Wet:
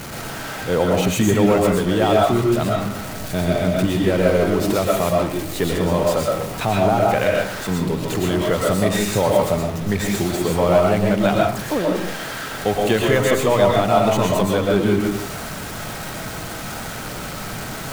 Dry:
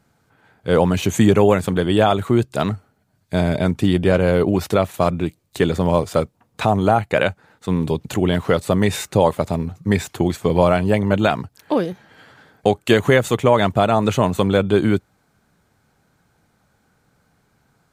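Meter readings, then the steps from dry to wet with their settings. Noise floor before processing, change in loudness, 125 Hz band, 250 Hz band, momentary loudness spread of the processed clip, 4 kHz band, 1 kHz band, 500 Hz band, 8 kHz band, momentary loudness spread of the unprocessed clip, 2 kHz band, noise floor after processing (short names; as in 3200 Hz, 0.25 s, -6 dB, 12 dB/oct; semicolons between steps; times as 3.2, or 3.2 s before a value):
-64 dBFS, -1.0 dB, -1.5 dB, -0.5 dB, 13 LU, +2.0 dB, +0.5 dB, +0.5 dB, +6.0 dB, 8 LU, +0.5 dB, -30 dBFS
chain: zero-crossing step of -21.5 dBFS; digital reverb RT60 0.54 s, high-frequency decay 0.55×, pre-delay 80 ms, DRR -1.5 dB; gain -5.5 dB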